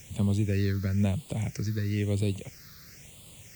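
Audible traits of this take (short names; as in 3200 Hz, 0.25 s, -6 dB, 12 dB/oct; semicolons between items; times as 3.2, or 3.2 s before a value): a quantiser's noise floor 8-bit, dither triangular; phasing stages 6, 1 Hz, lowest notch 760–1600 Hz; AAC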